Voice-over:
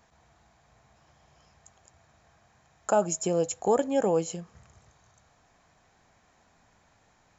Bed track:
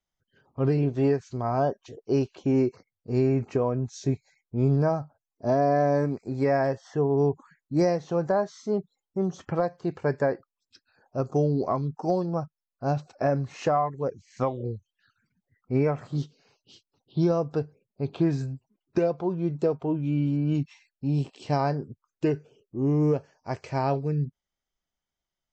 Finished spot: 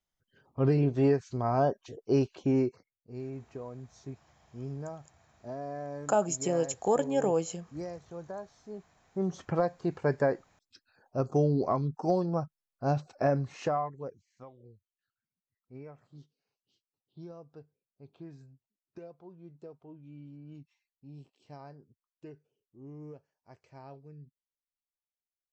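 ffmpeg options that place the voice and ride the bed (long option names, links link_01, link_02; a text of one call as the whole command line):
ffmpeg -i stem1.wav -i stem2.wav -filter_complex "[0:a]adelay=3200,volume=-2.5dB[link_01];[1:a]volume=13dB,afade=type=out:start_time=2.38:duration=0.69:silence=0.177828,afade=type=in:start_time=8.88:duration=0.47:silence=0.188365,afade=type=out:start_time=13.27:duration=1.1:silence=0.0891251[link_02];[link_01][link_02]amix=inputs=2:normalize=0" out.wav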